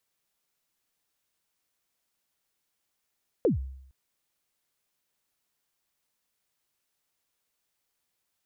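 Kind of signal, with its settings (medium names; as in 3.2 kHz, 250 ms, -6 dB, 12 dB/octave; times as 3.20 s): kick drum length 0.46 s, from 550 Hz, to 66 Hz, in 130 ms, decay 0.74 s, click off, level -17.5 dB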